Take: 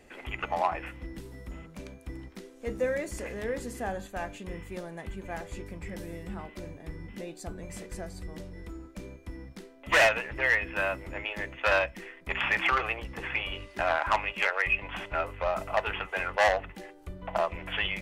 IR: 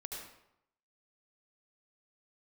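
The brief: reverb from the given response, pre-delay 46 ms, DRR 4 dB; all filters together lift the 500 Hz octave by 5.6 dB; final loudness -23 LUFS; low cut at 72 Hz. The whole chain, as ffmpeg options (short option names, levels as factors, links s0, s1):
-filter_complex "[0:a]highpass=72,equalizer=f=500:t=o:g=7,asplit=2[s0][s1];[1:a]atrim=start_sample=2205,adelay=46[s2];[s1][s2]afir=irnorm=-1:irlink=0,volume=0.75[s3];[s0][s3]amix=inputs=2:normalize=0,volume=1.5"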